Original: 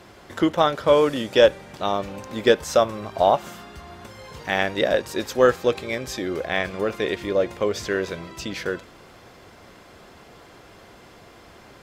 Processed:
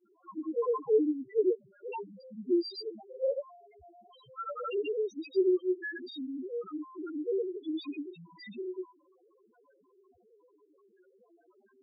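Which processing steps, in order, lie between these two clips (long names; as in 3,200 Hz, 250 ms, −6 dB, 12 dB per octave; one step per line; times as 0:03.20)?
spectral tilt +2.5 dB per octave
granular cloud 100 ms, grains 20 per second, pitch spread up and down by 0 semitones
formants moved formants −5 semitones
spectral peaks only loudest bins 1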